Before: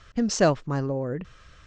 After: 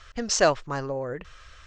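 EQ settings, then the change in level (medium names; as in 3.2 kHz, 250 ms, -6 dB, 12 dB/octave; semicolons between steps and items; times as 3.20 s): peaking EQ 190 Hz -15 dB 2 oct; +4.5 dB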